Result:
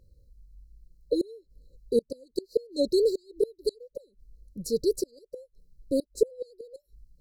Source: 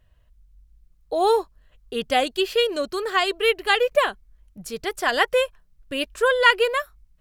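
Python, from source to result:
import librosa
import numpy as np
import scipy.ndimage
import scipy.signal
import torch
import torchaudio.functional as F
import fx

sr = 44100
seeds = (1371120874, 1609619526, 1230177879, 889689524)

y = fx.gate_flip(x, sr, shuts_db=-14.0, range_db=-32)
y = fx.brickwall_bandstop(y, sr, low_hz=570.0, high_hz=3900.0)
y = fx.bass_treble(y, sr, bass_db=-5, treble_db=-8)
y = F.gain(torch.from_numpy(y), 6.5).numpy()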